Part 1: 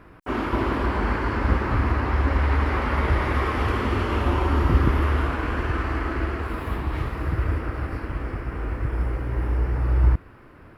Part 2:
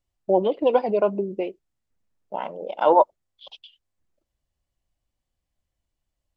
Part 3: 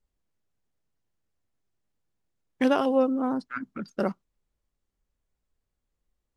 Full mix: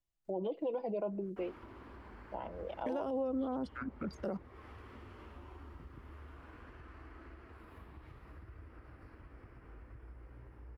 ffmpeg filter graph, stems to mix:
-filter_complex "[0:a]acompressor=threshold=0.0316:ratio=4,flanger=delay=2.6:depth=8.3:regen=-72:speed=0.67:shape=sinusoidal,adelay=1100,volume=0.158[s0];[1:a]aecho=1:1:6.1:0.36,volume=0.299[s1];[2:a]equalizer=f=260:w=1.5:g=-6,adelay=250,volume=1.26[s2];[s0][s1][s2]amix=inputs=3:normalize=0,acrossover=split=290|770[s3][s4][s5];[s3]acompressor=threshold=0.0141:ratio=4[s6];[s4]acompressor=threshold=0.0355:ratio=4[s7];[s5]acompressor=threshold=0.00398:ratio=4[s8];[s6][s7][s8]amix=inputs=3:normalize=0,alimiter=level_in=1.68:limit=0.0631:level=0:latency=1:release=38,volume=0.596"

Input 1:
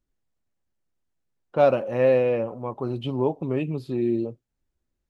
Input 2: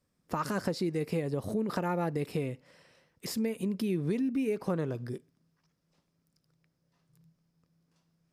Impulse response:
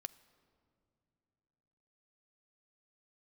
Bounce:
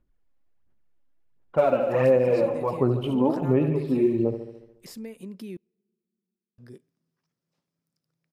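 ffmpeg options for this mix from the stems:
-filter_complex "[0:a]lowpass=2700,aphaser=in_gain=1:out_gain=1:delay=3.8:decay=0.63:speed=1.4:type=sinusoidal,volume=1.12,asplit=2[s0][s1];[s1]volume=0.316[s2];[1:a]highpass=120,adelay=1600,volume=0.422,asplit=3[s3][s4][s5];[s3]atrim=end=5.57,asetpts=PTS-STARTPTS,afade=t=out:st=5.566:d=0.004:c=hsin[s6];[s4]atrim=start=5.57:end=6.58,asetpts=PTS-STARTPTS,volume=0[s7];[s5]atrim=start=6.58,asetpts=PTS-STARTPTS,afade=t=in:d=0.004:c=hsin[s8];[s6][s7][s8]concat=n=3:v=0:a=1,asplit=2[s9][s10];[s10]volume=0.141[s11];[2:a]atrim=start_sample=2205[s12];[s11][s12]afir=irnorm=-1:irlink=0[s13];[s2]aecho=0:1:72|144|216|288|360|432|504|576|648:1|0.59|0.348|0.205|0.121|0.0715|0.0422|0.0249|0.0147[s14];[s0][s9][s13][s14]amix=inputs=4:normalize=0,acompressor=threshold=0.158:ratio=6"

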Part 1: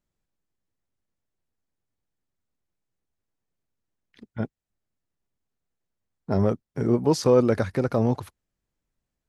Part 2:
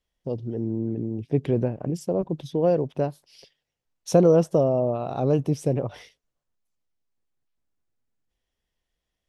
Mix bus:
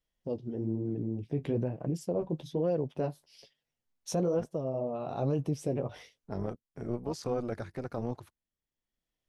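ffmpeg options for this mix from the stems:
-filter_complex "[0:a]tremolo=f=240:d=0.71,volume=0.299,asplit=2[s0][s1];[1:a]flanger=delay=6:depth=7.3:regen=-36:speed=1.1:shape=sinusoidal,volume=0.841[s2];[s1]apad=whole_len=409554[s3];[s2][s3]sidechaincompress=threshold=0.00355:ratio=6:attack=49:release=840[s4];[s0][s4]amix=inputs=2:normalize=0,alimiter=limit=0.0891:level=0:latency=1:release=79"

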